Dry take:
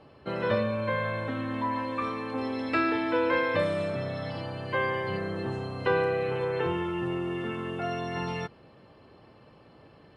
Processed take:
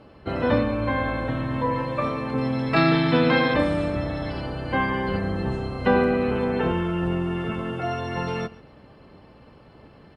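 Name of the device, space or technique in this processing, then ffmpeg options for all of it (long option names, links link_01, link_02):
octave pedal: -filter_complex "[0:a]asettb=1/sr,asplit=3[link_01][link_02][link_03];[link_01]atrim=end=2.764[link_04];[link_02]atrim=start=2.76:end=3.54,asetpts=PTS-STARTPTS,afade=type=in:duration=0.004:curve=qsin,afade=type=out:start_time=0.776:duration=0.004:curve=qsin,equalizer=frequency=125:width_type=o:width=1:gain=-4,equalizer=frequency=250:width_type=o:width=1:gain=5,equalizer=frequency=1000:width_type=o:width=1:gain=-4,equalizer=frequency=4000:width_type=o:width=1:gain=12[link_05];[link_03]atrim=start=3.536[link_06];[link_04][link_05]acrossfade=duration=0.004:curve1=hsin:curve2=qsin[link_07];[link_07][link_06]acrossfade=duration=0.004:curve1=qsin:curve2=hsin,aecho=1:1:134|268:0.0891|0.0152,asplit=2[link_08][link_09];[link_09]asetrate=22050,aresample=44100,atempo=2,volume=-1dB[link_10];[link_08][link_10]amix=inputs=2:normalize=0,volume=3dB"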